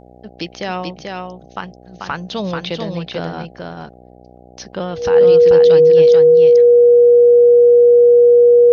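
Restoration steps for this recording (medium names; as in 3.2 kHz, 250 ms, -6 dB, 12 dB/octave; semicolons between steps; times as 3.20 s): de-hum 61.7 Hz, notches 13; band-stop 480 Hz, Q 30; inverse comb 438 ms -4 dB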